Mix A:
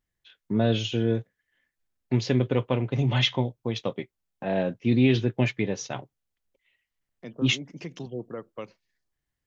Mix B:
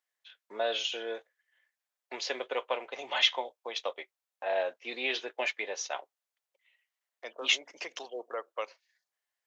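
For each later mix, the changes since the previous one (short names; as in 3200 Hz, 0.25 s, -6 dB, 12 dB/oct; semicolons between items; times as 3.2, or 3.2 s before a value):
second voice +6.0 dB; master: add HPF 570 Hz 24 dB/oct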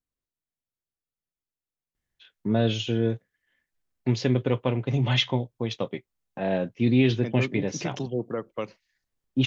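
first voice: entry +1.95 s; master: remove HPF 570 Hz 24 dB/oct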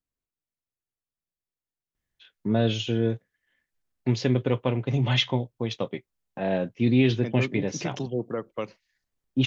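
none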